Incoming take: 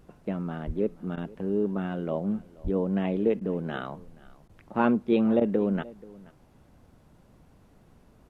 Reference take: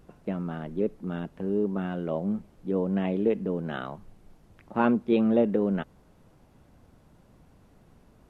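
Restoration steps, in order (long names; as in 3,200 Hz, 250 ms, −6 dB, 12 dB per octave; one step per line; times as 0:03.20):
0:00.66–0:00.78: high-pass filter 140 Hz 24 dB per octave
0:02.63–0:02.75: high-pass filter 140 Hz 24 dB per octave
repair the gap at 0:01.16/0:03.40/0:04.48/0:05.40, 11 ms
echo removal 480 ms −22 dB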